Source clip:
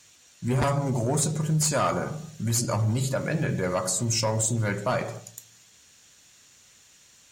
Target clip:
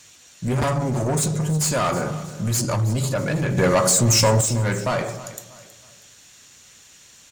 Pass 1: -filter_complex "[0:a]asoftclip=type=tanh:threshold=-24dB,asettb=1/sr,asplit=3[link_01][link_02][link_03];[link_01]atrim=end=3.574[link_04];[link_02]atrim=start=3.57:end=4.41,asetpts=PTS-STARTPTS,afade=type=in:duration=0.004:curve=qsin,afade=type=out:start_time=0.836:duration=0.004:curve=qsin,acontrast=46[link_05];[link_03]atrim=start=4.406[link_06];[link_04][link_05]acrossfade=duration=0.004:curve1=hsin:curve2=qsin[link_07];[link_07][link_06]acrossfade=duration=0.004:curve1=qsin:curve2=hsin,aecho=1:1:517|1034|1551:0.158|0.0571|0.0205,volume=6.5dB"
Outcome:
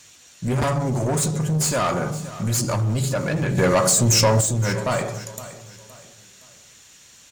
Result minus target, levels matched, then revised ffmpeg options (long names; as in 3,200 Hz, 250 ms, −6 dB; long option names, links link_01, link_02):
echo 197 ms late
-filter_complex "[0:a]asoftclip=type=tanh:threshold=-24dB,asettb=1/sr,asplit=3[link_01][link_02][link_03];[link_01]atrim=end=3.574[link_04];[link_02]atrim=start=3.57:end=4.41,asetpts=PTS-STARTPTS,afade=type=in:duration=0.004:curve=qsin,afade=type=out:start_time=0.836:duration=0.004:curve=qsin,acontrast=46[link_05];[link_03]atrim=start=4.406[link_06];[link_04][link_05]acrossfade=duration=0.004:curve1=hsin:curve2=qsin[link_07];[link_07][link_06]acrossfade=duration=0.004:curve1=qsin:curve2=hsin,aecho=1:1:320|640|960:0.158|0.0571|0.0205,volume=6.5dB"